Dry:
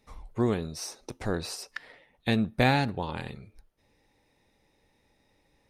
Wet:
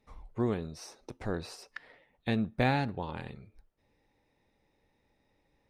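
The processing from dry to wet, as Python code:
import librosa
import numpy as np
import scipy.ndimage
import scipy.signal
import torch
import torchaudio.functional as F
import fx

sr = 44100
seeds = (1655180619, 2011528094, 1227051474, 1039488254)

y = fx.high_shelf(x, sr, hz=4500.0, db=-10.0)
y = y * librosa.db_to_amplitude(-4.0)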